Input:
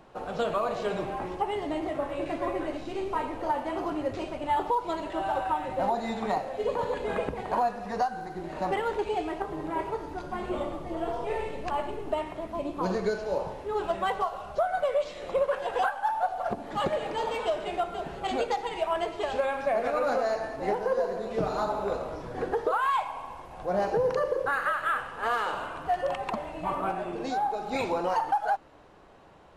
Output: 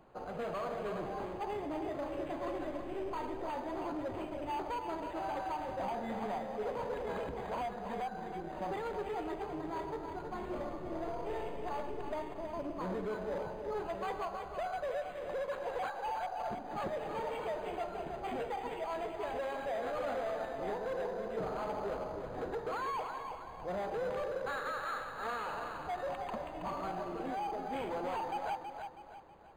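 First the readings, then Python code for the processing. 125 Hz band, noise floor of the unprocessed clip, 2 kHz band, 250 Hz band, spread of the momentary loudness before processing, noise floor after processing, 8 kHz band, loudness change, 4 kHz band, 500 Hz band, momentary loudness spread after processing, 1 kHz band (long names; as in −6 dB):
−7.0 dB, −42 dBFS, −9.5 dB, −7.0 dB, 7 LU, −45 dBFS, can't be measured, −8.5 dB, −10.0 dB, −8.5 dB, 4 LU, −9.0 dB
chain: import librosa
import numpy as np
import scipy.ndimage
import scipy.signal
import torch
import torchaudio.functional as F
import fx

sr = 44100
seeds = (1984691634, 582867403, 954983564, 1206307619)

y = np.clip(x, -10.0 ** (-27.5 / 20.0), 10.0 ** (-27.5 / 20.0))
y = fx.echo_feedback(y, sr, ms=323, feedback_pct=39, wet_db=-7.0)
y = np.interp(np.arange(len(y)), np.arange(len(y))[::8], y[::8])
y = y * 10.0 ** (-6.5 / 20.0)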